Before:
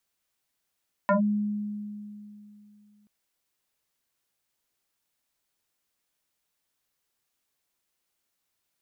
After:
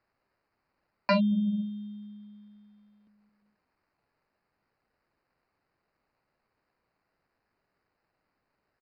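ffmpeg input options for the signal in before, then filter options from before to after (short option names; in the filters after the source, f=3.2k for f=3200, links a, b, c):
-f lavfi -i "aevalsrc='0.126*pow(10,-3*t/2.86)*sin(2*PI*208*t+3.5*clip(1-t/0.12,0,1)*sin(2*PI*1.92*208*t))':d=1.98:s=44100"
-filter_complex "[0:a]acrossover=split=240[a][b];[a]aecho=1:1:220|352|431.2|478.7|507.2:0.631|0.398|0.251|0.158|0.1[c];[b]acrusher=samples=13:mix=1:aa=0.000001[d];[c][d]amix=inputs=2:normalize=0,aresample=11025,aresample=44100"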